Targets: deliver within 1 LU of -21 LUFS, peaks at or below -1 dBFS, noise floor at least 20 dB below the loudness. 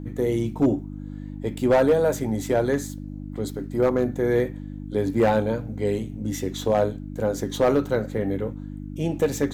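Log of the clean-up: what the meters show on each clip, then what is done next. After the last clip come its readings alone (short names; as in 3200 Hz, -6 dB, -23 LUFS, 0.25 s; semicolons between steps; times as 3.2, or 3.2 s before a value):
clipped 0.6%; flat tops at -12.5 dBFS; hum 50 Hz; harmonics up to 300 Hz; hum level -32 dBFS; loudness -24.5 LUFS; peak -12.5 dBFS; loudness target -21.0 LUFS
-> clip repair -12.5 dBFS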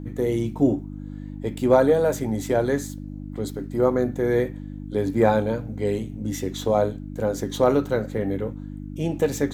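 clipped 0.0%; hum 50 Hz; harmonics up to 300 Hz; hum level -32 dBFS
-> de-hum 50 Hz, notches 6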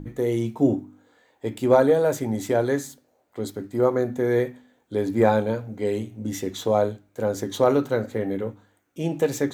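hum none; loudness -24.0 LUFS; peak -5.0 dBFS; loudness target -21.0 LUFS
-> gain +3 dB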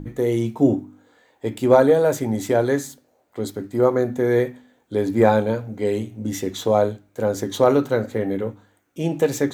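loudness -21.0 LUFS; peak -2.0 dBFS; noise floor -63 dBFS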